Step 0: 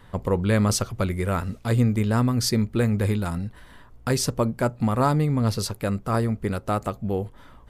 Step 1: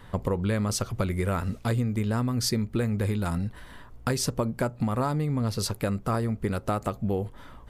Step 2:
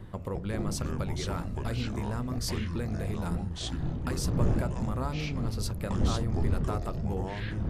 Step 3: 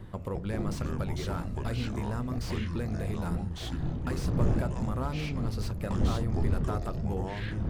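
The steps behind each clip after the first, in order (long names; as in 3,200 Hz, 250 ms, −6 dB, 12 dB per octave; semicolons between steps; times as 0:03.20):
downward compressor, threshold −25 dBFS, peak gain reduction 10 dB; level +2 dB
wind on the microphone 160 Hz −27 dBFS; hum removal 45.01 Hz, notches 16; delay with pitch and tempo change per echo 153 ms, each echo −6 semitones, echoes 3; level −7.5 dB
slew-rate limiting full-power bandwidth 38 Hz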